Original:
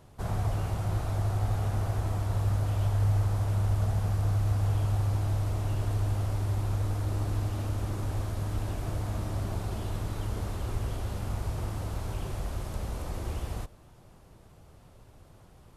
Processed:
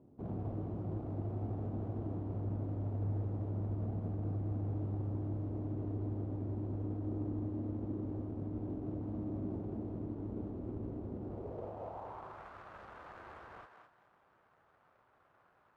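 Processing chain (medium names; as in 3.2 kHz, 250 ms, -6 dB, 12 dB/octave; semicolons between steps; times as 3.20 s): median filter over 25 samples; band-pass sweep 280 Hz -> 1.5 kHz, 11.13–12.46 s; thinning echo 209 ms, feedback 27%, high-pass 500 Hz, level -5.5 dB; trim +4 dB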